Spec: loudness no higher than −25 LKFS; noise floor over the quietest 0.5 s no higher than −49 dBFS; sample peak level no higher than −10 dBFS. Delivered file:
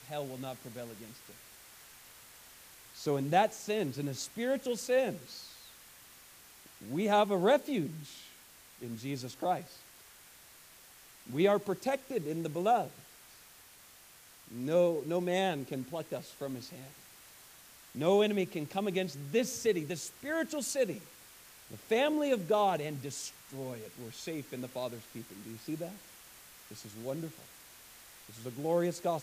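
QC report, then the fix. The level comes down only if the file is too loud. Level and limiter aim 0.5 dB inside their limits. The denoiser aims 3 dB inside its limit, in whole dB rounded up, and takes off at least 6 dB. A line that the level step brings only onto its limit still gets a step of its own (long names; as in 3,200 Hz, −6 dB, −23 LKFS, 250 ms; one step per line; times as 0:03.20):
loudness −33.5 LKFS: in spec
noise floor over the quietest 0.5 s −57 dBFS: in spec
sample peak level −13.5 dBFS: in spec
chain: no processing needed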